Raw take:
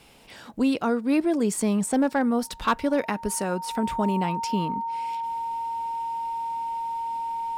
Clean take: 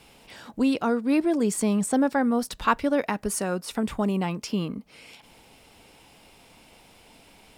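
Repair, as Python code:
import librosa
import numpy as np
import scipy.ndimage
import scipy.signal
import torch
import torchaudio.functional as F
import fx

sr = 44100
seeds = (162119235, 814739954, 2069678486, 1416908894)

y = fx.fix_declip(x, sr, threshold_db=-14.5)
y = fx.notch(y, sr, hz=920.0, q=30.0)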